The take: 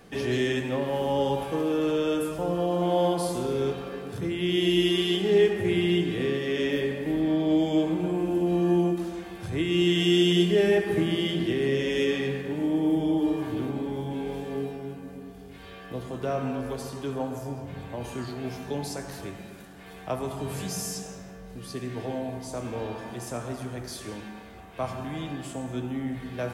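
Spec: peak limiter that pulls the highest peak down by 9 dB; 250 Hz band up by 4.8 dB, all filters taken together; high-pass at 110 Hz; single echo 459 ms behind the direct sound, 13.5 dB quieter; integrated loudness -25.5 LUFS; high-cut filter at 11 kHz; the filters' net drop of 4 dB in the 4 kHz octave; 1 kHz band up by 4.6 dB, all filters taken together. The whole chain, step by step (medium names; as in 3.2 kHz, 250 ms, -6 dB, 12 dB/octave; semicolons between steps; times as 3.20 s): high-pass 110 Hz; low-pass 11 kHz; peaking EQ 250 Hz +7 dB; peaking EQ 1 kHz +6 dB; peaking EQ 4 kHz -6.5 dB; peak limiter -17.5 dBFS; delay 459 ms -13.5 dB; trim +1 dB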